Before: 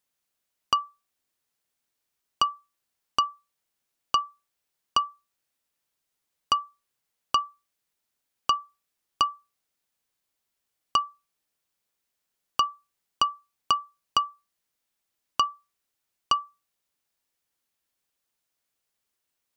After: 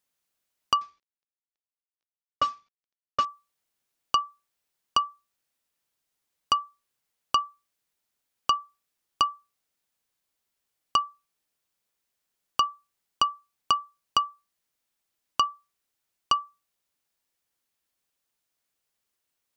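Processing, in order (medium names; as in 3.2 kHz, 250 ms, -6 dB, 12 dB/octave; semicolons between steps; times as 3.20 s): 0.81–3.25 s: CVSD coder 32 kbps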